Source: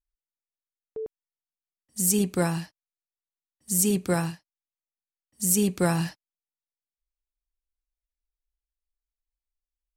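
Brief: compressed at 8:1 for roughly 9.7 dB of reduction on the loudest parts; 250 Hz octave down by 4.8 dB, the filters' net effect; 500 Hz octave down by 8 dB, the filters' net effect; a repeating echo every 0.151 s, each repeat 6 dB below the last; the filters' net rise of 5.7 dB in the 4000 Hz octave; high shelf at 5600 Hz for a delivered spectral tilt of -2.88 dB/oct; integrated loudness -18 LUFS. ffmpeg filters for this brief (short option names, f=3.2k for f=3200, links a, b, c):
-af "equalizer=f=250:t=o:g=-6,equalizer=f=500:t=o:g=-8.5,equalizer=f=4k:t=o:g=4.5,highshelf=f=5.6k:g=7,acompressor=threshold=-23dB:ratio=8,aecho=1:1:151|302|453|604|755|906:0.501|0.251|0.125|0.0626|0.0313|0.0157,volume=10dB"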